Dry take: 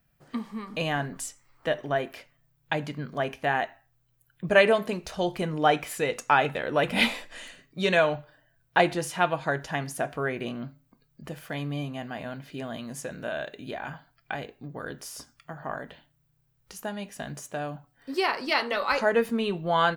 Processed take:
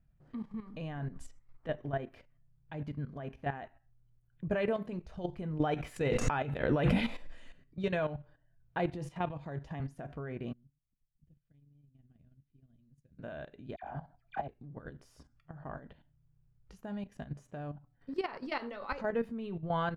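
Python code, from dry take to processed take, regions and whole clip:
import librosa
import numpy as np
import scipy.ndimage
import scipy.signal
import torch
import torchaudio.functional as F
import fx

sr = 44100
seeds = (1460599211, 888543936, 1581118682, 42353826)

y = fx.chain(x, sr, fx.high_shelf(hz=3200.0, db=4.0),
    fx.pre_swell(db_per_s=23.0), at=(5.6, 7.44))
y = fx.chain(y, sr, fx.peak_eq(hz=1500.0, db=-8.5, octaves=0.29),
    fx.band_squash(depth_pct=40), at=(8.93, 9.8))
y = fx.chain(y, sr, fx.tone_stack(knobs='10-0-1'),
    fx.level_steps(step_db=15), at=(10.53, 13.19))
y = fx.chain(y, sr, fx.peak_eq(hz=730.0, db=12.5, octaves=0.76),
    fx.dispersion(late='lows', ms=71.0, hz=1600.0), at=(13.76, 14.48))
y = fx.level_steps(y, sr, step_db=12)
y = fx.riaa(y, sr, side='playback')
y = y * 10.0 ** (-8.5 / 20.0)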